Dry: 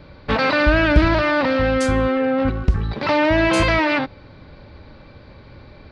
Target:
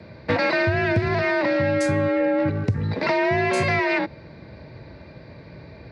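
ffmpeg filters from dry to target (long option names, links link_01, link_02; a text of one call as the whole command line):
ffmpeg -i in.wav -af "afreqshift=46,acompressor=threshold=-18dB:ratio=6,equalizer=frequency=500:width_type=o:width=0.33:gain=4,equalizer=frequency=1250:width_type=o:width=0.33:gain=-7,equalizer=frequency=2000:width_type=o:width=0.33:gain=5,equalizer=frequency=3150:width_type=o:width=0.33:gain=-8" out.wav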